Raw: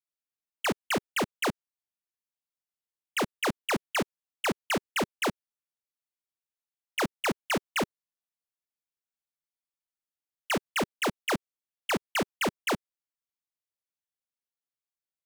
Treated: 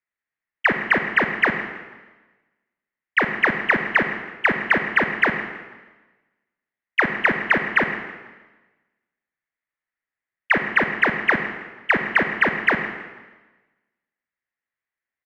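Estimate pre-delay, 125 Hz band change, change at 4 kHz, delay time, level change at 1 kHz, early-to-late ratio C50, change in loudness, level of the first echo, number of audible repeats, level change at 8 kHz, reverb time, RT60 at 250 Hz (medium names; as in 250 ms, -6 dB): 35 ms, +5.5 dB, 0.0 dB, 163 ms, +8.0 dB, 7.5 dB, +10.5 dB, -16.5 dB, 3, under -15 dB, 1.2 s, 1.3 s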